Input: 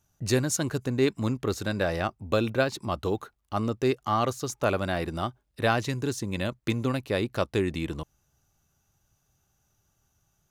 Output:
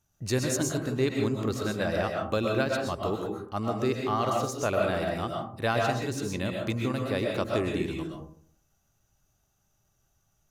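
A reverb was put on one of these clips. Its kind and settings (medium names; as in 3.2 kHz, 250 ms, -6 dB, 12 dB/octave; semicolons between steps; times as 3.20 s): algorithmic reverb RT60 0.57 s, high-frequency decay 0.35×, pre-delay 85 ms, DRR 0 dB; trim -3.5 dB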